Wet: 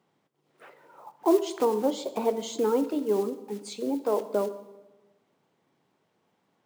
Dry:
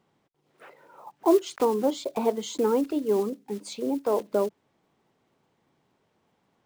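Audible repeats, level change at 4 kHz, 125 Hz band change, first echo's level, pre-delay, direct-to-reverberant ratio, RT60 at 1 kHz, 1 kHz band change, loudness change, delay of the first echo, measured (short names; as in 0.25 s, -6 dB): none, -1.0 dB, n/a, none, 5 ms, 11.0 dB, 1.1 s, -1.0 dB, -1.0 dB, none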